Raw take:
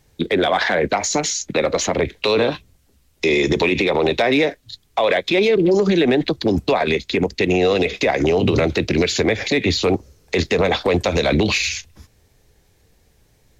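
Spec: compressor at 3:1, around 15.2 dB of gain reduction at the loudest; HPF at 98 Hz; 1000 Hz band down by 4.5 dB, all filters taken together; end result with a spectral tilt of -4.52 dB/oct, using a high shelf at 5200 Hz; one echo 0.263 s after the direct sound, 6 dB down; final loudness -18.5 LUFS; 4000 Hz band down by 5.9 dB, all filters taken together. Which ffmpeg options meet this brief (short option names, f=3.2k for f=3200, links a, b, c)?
-af "highpass=98,equalizer=f=1k:t=o:g=-6.5,equalizer=f=4k:t=o:g=-4,highshelf=f=5.2k:g=-6.5,acompressor=threshold=-36dB:ratio=3,aecho=1:1:263:0.501,volume=15dB"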